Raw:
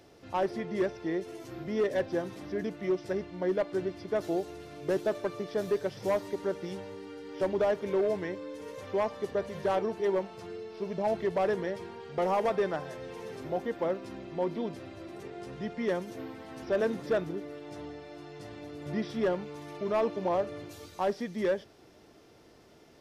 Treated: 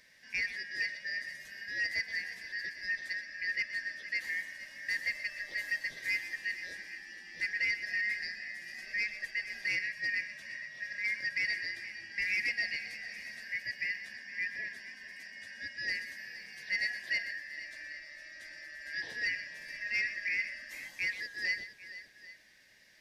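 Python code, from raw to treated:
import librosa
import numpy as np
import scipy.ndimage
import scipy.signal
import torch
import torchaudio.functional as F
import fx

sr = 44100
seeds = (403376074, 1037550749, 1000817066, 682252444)

p1 = fx.band_shuffle(x, sr, order='3142')
p2 = fx.peak_eq(p1, sr, hz=1400.0, db=-8.5, octaves=1.5)
y = p2 + fx.echo_multitap(p2, sr, ms=(124, 465, 794), db=(-12.5, -14.5, -19.0), dry=0)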